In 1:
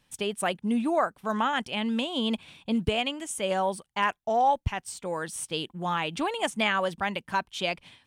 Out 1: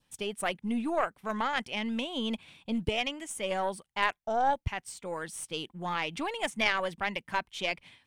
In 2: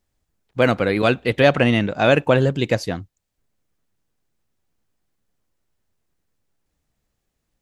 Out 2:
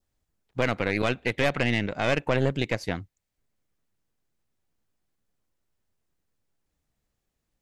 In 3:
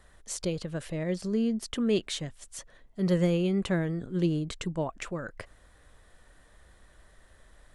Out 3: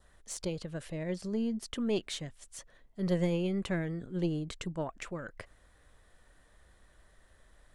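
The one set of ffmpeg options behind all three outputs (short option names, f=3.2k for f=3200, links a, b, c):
-af "adynamicequalizer=threshold=0.00708:dfrequency=2100:dqfactor=3.5:tfrequency=2100:tqfactor=3.5:attack=5:release=100:ratio=0.375:range=3.5:mode=boostabove:tftype=bell,aeval=exprs='1.06*(cos(1*acos(clip(val(0)/1.06,-1,1)))-cos(1*PI/2))+0.119*(cos(6*acos(clip(val(0)/1.06,-1,1)))-cos(6*PI/2))+0.0266*(cos(7*acos(clip(val(0)/1.06,-1,1)))-cos(7*PI/2))':c=same,alimiter=limit=-8.5dB:level=0:latency=1:release=242,volume=-3dB"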